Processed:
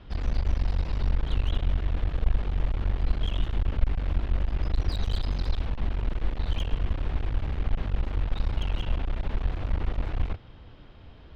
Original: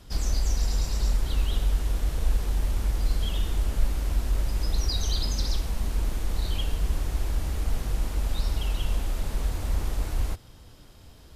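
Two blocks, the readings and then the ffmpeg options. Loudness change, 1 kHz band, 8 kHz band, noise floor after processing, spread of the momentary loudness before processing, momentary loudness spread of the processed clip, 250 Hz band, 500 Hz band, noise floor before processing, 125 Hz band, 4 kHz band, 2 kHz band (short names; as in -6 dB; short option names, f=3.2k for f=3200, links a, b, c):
-1.0 dB, 0.0 dB, -21.5 dB, -47 dBFS, 4 LU, 3 LU, +0.5 dB, 0.0 dB, -49 dBFS, 0.0 dB, -6.0 dB, 0.0 dB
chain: -af "lowpass=f=3.3k:w=0.5412,lowpass=f=3.3k:w=1.3066,aeval=exprs='clip(val(0),-1,0.0224)':c=same,volume=2dB"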